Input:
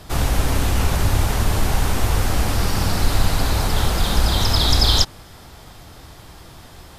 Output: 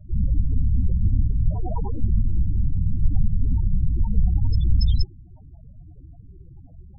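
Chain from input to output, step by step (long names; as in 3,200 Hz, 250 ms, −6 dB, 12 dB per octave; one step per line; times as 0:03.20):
each half-wave held at its own peak
0:01.50–0:01.98: mid-hump overdrive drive 23 dB, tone 6,800 Hz, clips at −6.5 dBFS
spectral peaks only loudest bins 8
level −6 dB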